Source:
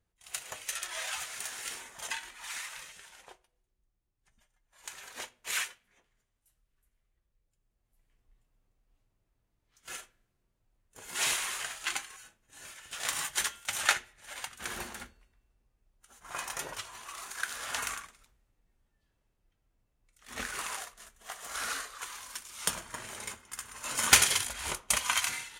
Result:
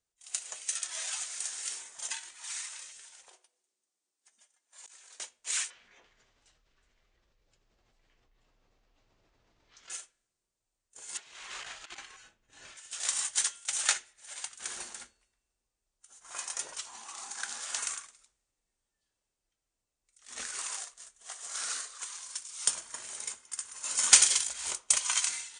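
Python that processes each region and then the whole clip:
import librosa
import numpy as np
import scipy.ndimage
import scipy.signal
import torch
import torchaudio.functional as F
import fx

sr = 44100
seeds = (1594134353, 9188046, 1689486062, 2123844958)

y = fx.chain(x, sr, fx.highpass(hz=230.0, slope=24),
    fx.over_compress(threshold_db=-56.0, ratio=-1.0), at=(3.29, 5.2))
y = fx.chain(y, sr, fx.gaussian_blur(sigma=2.0),
    fx.env_flatten(amount_pct=70), at=(5.7, 9.9))
y = fx.chain(y, sr, fx.lowpass(hz=3300.0, slope=12),
    fx.over_compress(threshold_db=-41.0, ratio=-0.5),
    fx.low_shelf(hz=260.0, db=11.0), at=(11.17, 12.77))
y = fx.chain(y, sr, fx.lowpass(hz=9200.0, slope=12),
    fx.small_body(hz=(220.0, 800.0), ring_ms=25, db=14), at=(16.86, 17.6))
y = scipy.signal.sosfilt(scipy.signal.butter(16, 9300.0, 'lowpass', fs=sr, output='sos'), y)
y = fx.bass_treble(y, sr, bass_db=-10, treble_db=14)
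y = F.gain(torch.from_numpy(y), -7.0).numpy()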